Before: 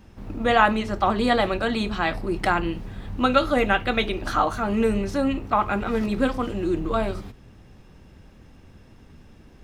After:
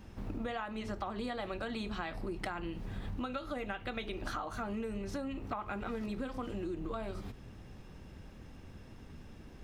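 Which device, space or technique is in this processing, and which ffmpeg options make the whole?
serial compression, leveller first: -af "acompressor=threshold=0.0708:ratio=2.5,acompressor=threshold=0.02:ratio=6,volume=0.794"

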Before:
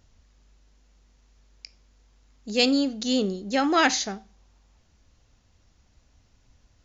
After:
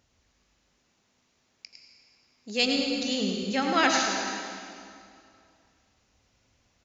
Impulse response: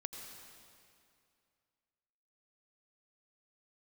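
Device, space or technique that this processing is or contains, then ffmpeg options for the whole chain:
PA in a hall: -filter_complex "[0:a]asplit=3[s0][s1][s2];[s0]afade=t=out:st=2.57:d=0.02[s3];[s1]asubboost=boost=9:cutoff=120,afade=t=in:st=2.57:d=0.02,afade=t=out:st=3.77:d=0.02[s4];[s2]afade=t=in:st=3.77:d=0.02[s5];[s3][s4][s5]amix=inputs=3:normalize=0,highpass=f=190:p=1,equalizer=f=2400:t=o:w=0.71:g=3,aecho=1:1:105:0.447[s6];[1:a]atrim=start_sample=2205[s7];[s6][s7]afir=irnorm=-1:irlink=0"

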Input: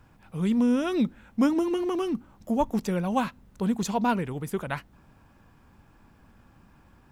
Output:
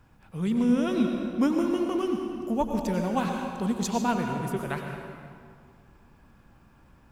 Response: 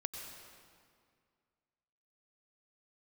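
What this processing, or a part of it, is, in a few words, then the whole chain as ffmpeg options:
stairwell: -filter_complex "[1:a]atrim=start_sample=2205[s0];[0:a][s0]afir=irnorm=-1:irlink=0,asettb=1/sr,asplit=3[s1][s2][s3];[s1]atrim=end=3.254[s4];[s2]atrim=start=3.25:end=4.02,asetpts=PTS-STARTPTS,afade=t=in:d=0.004:c=qsin,afade=t=out:st=0.766:d=0.004:c=qsin,equalizer=f=6200:t=o:w=1.9:g=4[s5];[s3]atrim=start=4.016[s6];[s4][s5]acrossfade=d=0.004:c1=hsin:c2=qsin[s7];[s7][s6]acrossfade=d=0.004:c1=qsin:c2=hsin"

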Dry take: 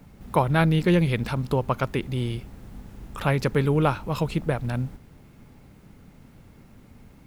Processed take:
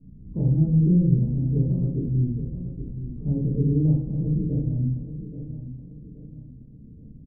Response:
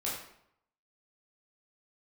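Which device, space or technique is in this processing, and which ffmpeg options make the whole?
next room: -filter_complex "[0:a]lowpass=f=290:w=0.5412,lowpass=f=290:w=1.3066[s0];[1:a]atrim=start_sample=2205[s1];[s0][s1]afir=irnorm=-1:irlink=0,asettb=1/sr,asplit=3[s2][s3][s4];[s2]atrim=end=1.154[s5];[s3]atrim=start=1.15:end=1.75,asetpts=PTS-STARTPTS,afade=t=in:d=0.004:c=qsin,afade=t=out:st=0.596:d=0.004:c=qsin,equalizer=f=1500:w=1.5:g=-6.5[s6];[s4]atrim=start=1.746[s7];[s5][s6]acrossfade=d=0.004:c1=hsin:c2=qsin[s8];[s8][s7]acrossfade=d=0.004:c1=qsin:c2=hsin,aecho=1:1:827|1654|2481|3308:0.266|0.106|0.0426|0.017"

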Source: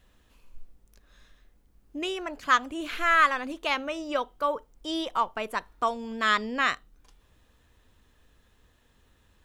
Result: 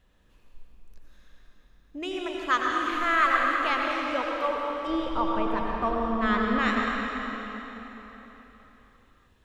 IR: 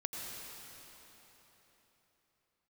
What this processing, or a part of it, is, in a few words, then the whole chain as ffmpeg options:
swimming-pool hall: -filter_complex "[0:a]asettb=1/sr,asplit=3[s0][s1][s2];[s0]atrim=end=4.874[s3];[s1]atrim=start=4.87:end=6.59,asetpts=PTS-STARTPTS,afade=t=in:d=0.004:c=qsin,afade=t=out:st=1.716:d=0.004:c=qsin,aemphasis=mode=reproduction:type=riaa[s4];[s2]atrim=start=6.586[s5];[s3][s4]acrossfade=d=0.004:c1=hsin:c2=qsin[s6];[s6][s5]acrossfade=d=0.004:c1=qsin:c2=hsin[s7];[1:a]atrim=start_sample=2205[s8];[s7][s8]afir=irnorm=-1:irlink=0,highshelf=f=5100:g=-7"

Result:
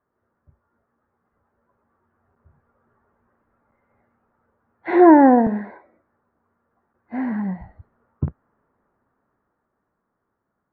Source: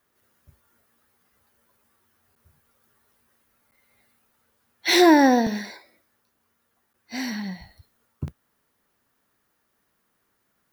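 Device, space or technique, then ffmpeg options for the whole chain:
action camera in a waterproof case: -af "lowpass=f=1400:w=0.5412,lowpass=f=1400:w=1.3066,dynaudnorm=f=360:g=13:m=4.22,volume=0.891" -ar 48000 -c:a aac -b:a 128k

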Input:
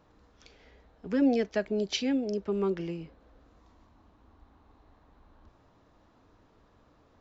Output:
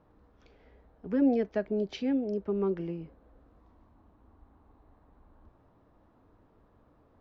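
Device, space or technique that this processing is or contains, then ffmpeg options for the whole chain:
through cloth: -af "lowpass=6600,highshelf=f=2500:g=-17"

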